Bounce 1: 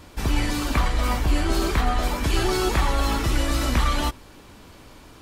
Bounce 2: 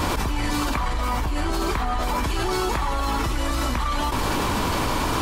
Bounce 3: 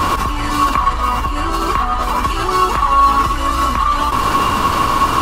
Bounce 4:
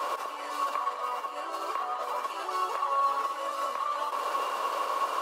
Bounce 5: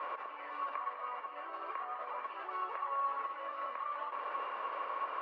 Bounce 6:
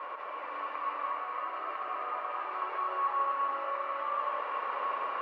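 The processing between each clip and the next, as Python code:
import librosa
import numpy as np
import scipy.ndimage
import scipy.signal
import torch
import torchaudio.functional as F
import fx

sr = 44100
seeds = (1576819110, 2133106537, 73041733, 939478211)

y1 = fx.peak_eq(x, sr, hz=1000.0, db=7.0, octaves=0.68)
y1 = fx.env_flatten(y1, sr, amount_pct=100)
y1 = y1 * 10.0 ** (-7.5 / 20.0)
y2 = fx.peak_eq(y1, sr, hz=1300.0, db=6.5, octaves=0.46)
y2 = fx.small_body(y2, sr, hz=(1100.0, 2800.0), ring_ms=75, db=16)
y2 = y2 * 10.0 ** (3.5 / 20.0)
y3 = fx.ladder_highpass(y2, sr, hz=480.0, resonance_pct=60)
y3 = y3 + 10.0 ** (-11.0 / 20.0) * np.pad(y3, (int(202 * sr / 1000.0), 0))[:len(y3)]
y3 = y3 * 10.0 ** (-7.0 / 20.0)
y4 = fx.ladder_lowpass(y3, sr, hz=2500.0, resonance_pct=45)
y4 = y4 * 10.0 ** (-1.5 / 20.0)
y5 = fx.dmg_crackle(y4, sr, seeds[0], per_s=63.0, level_db=-69.0)
y5 = fx.rev_freeverb(y5, sr, rt60_s=4.6, hf_ratio=0.9, predelay_ms=110, drr_db=-4.5)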